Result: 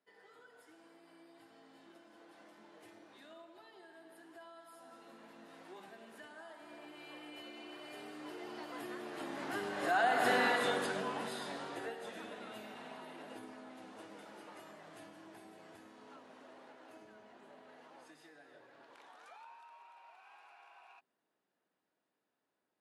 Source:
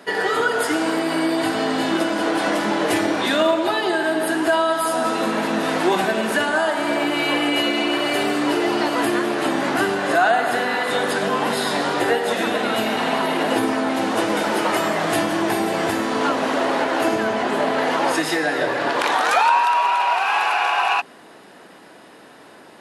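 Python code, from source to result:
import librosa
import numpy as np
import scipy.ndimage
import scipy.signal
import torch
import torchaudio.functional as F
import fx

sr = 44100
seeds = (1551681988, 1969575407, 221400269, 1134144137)

y = fx.doppler_pass(x, sr, speed_mps=9, closest_m=2.1, pass_at_s=10.39)
y = y * 10.0 ** (-8.0 / 20.0)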